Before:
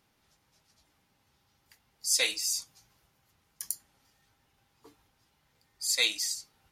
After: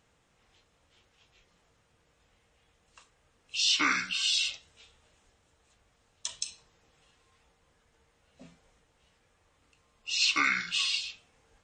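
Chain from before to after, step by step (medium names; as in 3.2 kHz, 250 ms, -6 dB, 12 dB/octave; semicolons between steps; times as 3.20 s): peak limiter -17.5 dBFS, peak gain reduction 6 dB; speed mistake 78 rpm record played at 45 rpm; trim +2.5 dB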